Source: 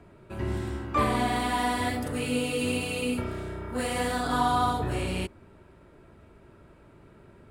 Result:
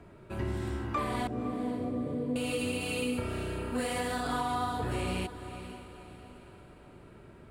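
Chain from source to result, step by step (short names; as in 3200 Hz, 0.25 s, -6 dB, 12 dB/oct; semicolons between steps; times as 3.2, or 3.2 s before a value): 1.27–2.36 elliptic band-pass 110–590 Hz; compressor, threshold -29 dBFS, peak gain reduction 9 dB; on a send: diffused feedback echo 0.514 s, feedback 45%, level -11.5 dB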